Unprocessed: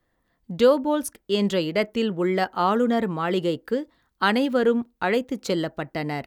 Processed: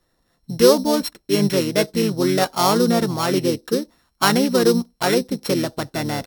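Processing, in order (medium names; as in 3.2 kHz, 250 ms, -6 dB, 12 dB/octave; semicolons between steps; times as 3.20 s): sorted samples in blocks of 8 samples; harmony voices -5 st -5 dB; trim +3 dB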